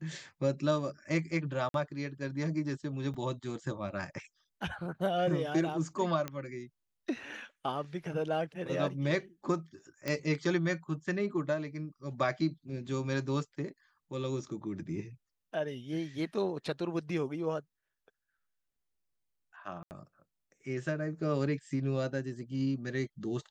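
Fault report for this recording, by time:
1.69–1.74 gap 52 ms
3.14 gap 4.9 ms
6.28 pop -21 dBFS
10.08 pop -18 dBFS
19.83–19.91 gap 79 ms

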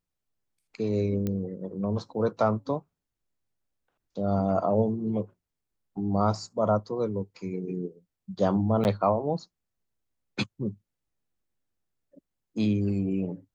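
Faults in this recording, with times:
1.27 pop -18 dBFS
8.84–8.85 gap 9.8 ms

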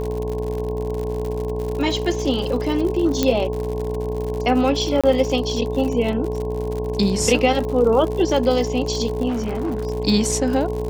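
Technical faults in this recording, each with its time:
buzz 60 Hz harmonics 18 -27 dBFS
crackle 90/s -26 dBFS
tone 430 Hz -25 dBFS
3.23 pop -4 dBFS
5.01–5.04 gap 26 ms
9.28–9.85 clipped -20 dBFS

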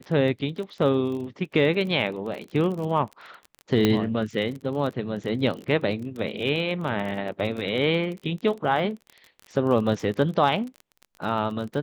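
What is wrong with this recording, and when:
crackle 29/s -32 dBFS
3.85 pop -7 dBFS

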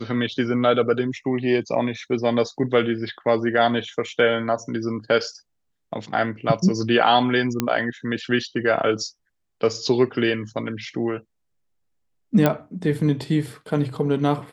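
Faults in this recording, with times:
7.6 pop -6 dBFS
12.46 pop -5 dBFS

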